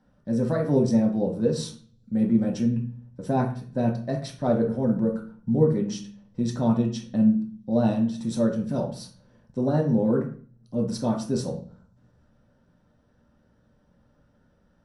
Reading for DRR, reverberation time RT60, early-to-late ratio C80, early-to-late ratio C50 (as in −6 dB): −1.5 dB, 0.45 s, 13.5 dB, 7.5 dB